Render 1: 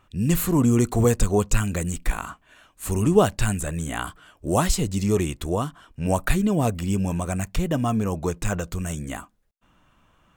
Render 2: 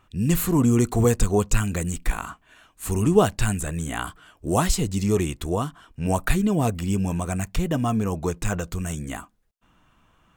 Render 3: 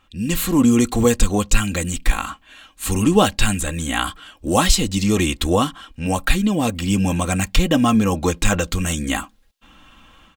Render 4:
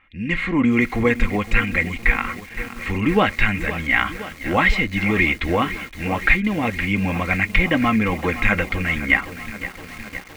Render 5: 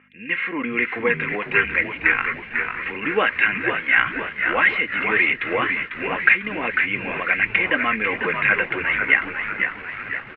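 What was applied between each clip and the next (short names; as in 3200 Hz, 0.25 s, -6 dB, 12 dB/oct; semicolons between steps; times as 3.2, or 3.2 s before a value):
notch 570 Hz, Q 12
bell 3500 Hz +8.5 dB 1.3 oct; comb 3.7 ms, depth 56%; AGC gain up to 10.5 dB; gain -1 dB
synth low-pass 2100 Hz, resonance Q 12; lo-fi delay 0.516 s, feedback 80%, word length 5-bit, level -13.5 dB; gain -3.5 dB
hum 50 Hz, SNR 19 dB; speaker cabinet 400–2800 Hz, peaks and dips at 440 Hz +4 dB, 780 Hz -5 dB, 1600 Hz +8 dB, 2700 Hz +7 dB; on a send: frequency-shifting echo 0.497 s, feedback 47%, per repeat -82 Hz, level -6.5 dB; on the sum: gain -2.5 dB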